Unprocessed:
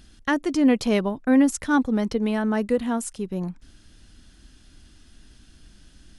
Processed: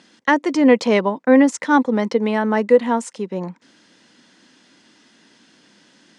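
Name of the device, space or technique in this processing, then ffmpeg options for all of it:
television speaker: -af "highpass=f=190:w=0.5412,highpass=f=190:w=1.3066,equalizer=f=510:t=q:w=4:g=8,equalizer=f=950:t=q:w=4:g=9,equalizer=f=2k:t=q:w=4:g=7,lowpass=f=7.7k:w=0.5412,lowpass=f=7.7k:w=1.3066,volume=3.5dB"

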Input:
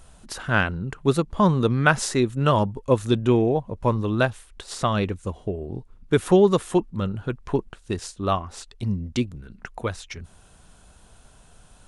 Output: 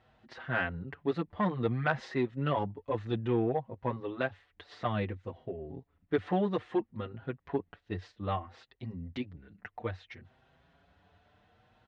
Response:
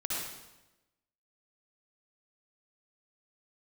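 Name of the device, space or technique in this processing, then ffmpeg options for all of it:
barber-pole flanger into a guitar amplifier: -filter_complex "[0:a]asplit=2[a][b];[b]adelay=6.1,afreqshift=0.6[c];[a][c]amix=inputs=2:normalize=1,asoftclip=type=tanh:threshold=-12.5dB,highpass=91,equalizer=f=92:t=q:w=4:g=7,equalizer=f=300:t=q:w=4:g=3,equalizer=f=500:t=q:w=4:g=3,equalizer=f=730:t=q:w=4:g=6,equalizer=f=1.9k:t=q:w=4:g=9,lowpass=f=3.9k:w=0.5412,lowpass=f=3.9k:w=1.3066,volume=-8.5dB"

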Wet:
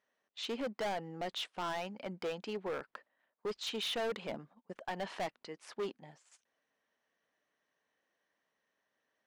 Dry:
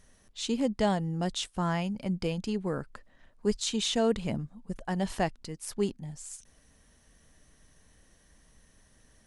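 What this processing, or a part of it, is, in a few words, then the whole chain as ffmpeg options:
walkie-talkie: -af "highpass=480,lowpass=2.9k,asoftclip=type=hard:threshold=-34.5dB,agate=range=-14dB:threshold=-59dB:ratio=16:detection=peak,volume=1.5dB"

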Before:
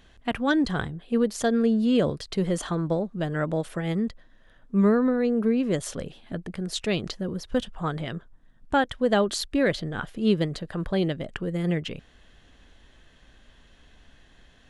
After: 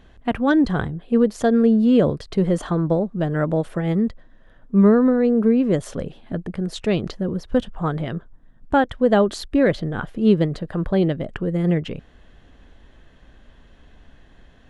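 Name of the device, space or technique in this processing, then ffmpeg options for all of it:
through cloth: -af "highshelf=f=2k:g=-11.5,volume=6.5dB"

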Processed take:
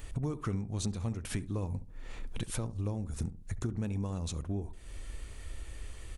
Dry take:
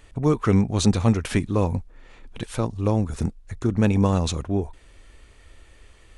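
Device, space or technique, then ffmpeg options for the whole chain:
ASMR close-microphone chain: -filter_complex "[0:a]lowshelf=f=190:g=8,acompressor=threshold=-33dB:ratio=6,highshelf=f=7.7k:g=5,highshelf=f=7.9k:g=8,asplit=2[a][b];[b]adelay=69,lowpass=f=850:p=1,volume=-13dB,asplit=2[c][d];[d]adelay=69,lowpass=f=850:p=1,volume=0.37,asplit=2[e][f];[f]adelay=69,lowpass=f=850:p=1,volume=0.37,asplit=2[g][h];[h]adelay=69,lowpass=f=850:p=1,volume=0.37[i];[a][c][e][g][i]amix=inputs=5:normalize=0"

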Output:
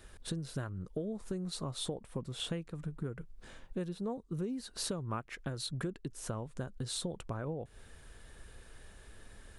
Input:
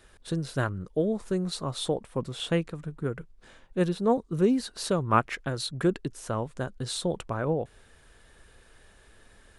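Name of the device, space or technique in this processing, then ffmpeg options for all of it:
ASMR close-microphone chain: -af "lowshelf=f=250:g=6,acompressor=threshold=-34dB:ratio=6,highshelf=f=7k:g=4.5,volume=-1.5dB"

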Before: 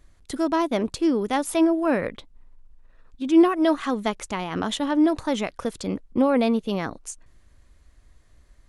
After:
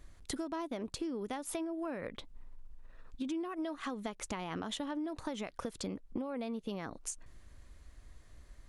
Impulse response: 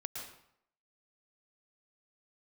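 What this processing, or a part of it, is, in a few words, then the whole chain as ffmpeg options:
serial compression, leveller first: -af "acompressor=threshold=-25dB:ratio=2.5,acompressor=threshold=-36dB:ratio=6"

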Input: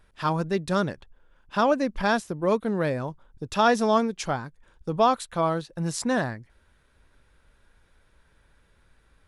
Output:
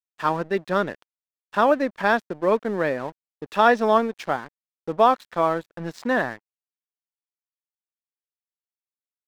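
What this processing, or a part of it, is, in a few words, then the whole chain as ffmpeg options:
pocket radio on a weak battery: -af "highpass=260,lowpass=3.1k,aeval=exprs='sgn(val(0))*max(abs(val(0))-0.00473,0)':c=same,equalizer=f=1.8k:t=o:w=0.22:g=4,volume=4dB"

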